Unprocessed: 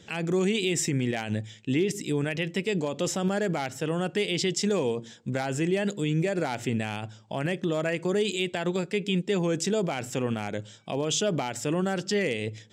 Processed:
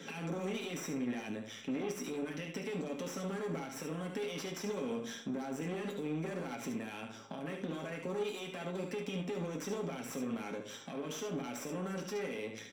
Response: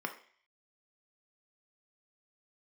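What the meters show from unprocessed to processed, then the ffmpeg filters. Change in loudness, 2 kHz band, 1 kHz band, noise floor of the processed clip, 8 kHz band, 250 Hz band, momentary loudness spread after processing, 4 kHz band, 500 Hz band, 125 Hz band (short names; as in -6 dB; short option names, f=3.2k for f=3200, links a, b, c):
-11.5 dB, -12.0 dB, -10.5 dB, -49 dBFS, -13.0 dB, -10.5 dB, 4 LU, -14.0 dB, -11.5 dB, -13.5 dB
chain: -filter_complex "[0:a]highshelf=f=5.2k:g=7.5,aecho=1:1:7.4:0.59,acompressor=threshold=-33dB:ratio=6,alimiter=level_in=6dB:limit=-24dB:level=0:latency=1:release=137,volume=-6dB,acrossover=split=380|3000[a][b][c];[b]acompressor=threshold=-53dB:ratio=2.5[d];[a][d][c]amix=inputs=3:normalize=0,aecho=1:1:73:0.398,aeval=exprs='clip(val(0),-1,0.00447)':c=same[e];[1:a]atrim=start_sample=2205,asetrate=48510,aresample=44100[f];[e][f]afir=irnorm=-1:irlink=0,volume=4dB"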